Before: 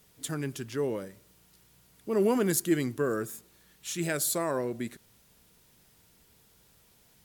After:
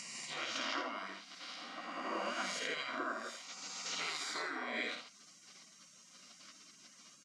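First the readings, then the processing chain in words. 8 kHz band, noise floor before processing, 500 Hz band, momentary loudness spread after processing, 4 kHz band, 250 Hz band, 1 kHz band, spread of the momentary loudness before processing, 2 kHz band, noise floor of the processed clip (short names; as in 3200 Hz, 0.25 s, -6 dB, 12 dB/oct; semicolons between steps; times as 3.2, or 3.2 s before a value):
-10.5 dB, -63 dBFS, -15.5 dB, 19 LU, +3.0 dB, -17.0 dB, -1.5 dB, 14 LU, +0.5 dB, -61 dBFS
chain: spectral swells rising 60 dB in 1.14 s; compressor 2.5:1, threshold -34 dBFS, peak gain reduction 10 dB; HPF 380 Hz 24 dB/oct; early reflections 52 ms -7.5 dB, 66 ms -15.5 dB; upward compressor, threshold -32 dBFS; LPF 4800 Hz 24 dB/oct; feedback echo 82 ms, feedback 33%, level -8 dB; spectral gate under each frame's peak -15 dB weak; notch comb 860 Hz; gain +6.5 dB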